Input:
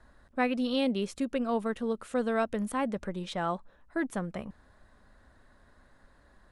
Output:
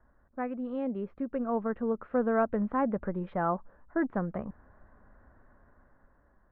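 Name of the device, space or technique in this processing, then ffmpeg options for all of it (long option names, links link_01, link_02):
action camera in a waterproof case: -af "lowpass=frequency=1600:width=0.5412,lowpass=frequency=1600:width=1.3066,dynaudnorm=framelen=610:gausssize=5:maxgain=8.5dB,volume=-6dB" -ar 48000 -c:a aac -b:a 128k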